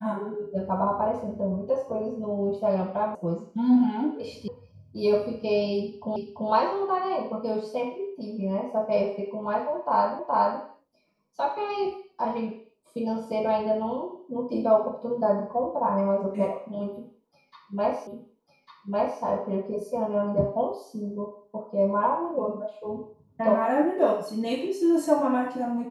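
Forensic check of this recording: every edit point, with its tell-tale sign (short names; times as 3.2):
3.15 sound cut off
4.48 sound cut off
6.16 repeat of the last 0.34 s
10.19 repeat of the last 0.42 s
18.07 repeat of the last 1.15 s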